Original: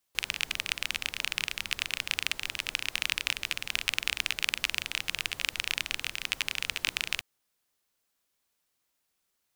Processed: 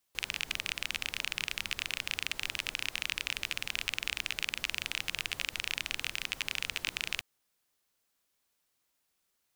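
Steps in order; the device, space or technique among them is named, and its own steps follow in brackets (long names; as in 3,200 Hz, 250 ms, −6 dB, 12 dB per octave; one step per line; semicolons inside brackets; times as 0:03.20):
soft clipper into limiter (soft clipping −7.5 dBFS, distortion −20 dB; brickwall limiter −13 dBFS, peak gain reduction 4.5 dB)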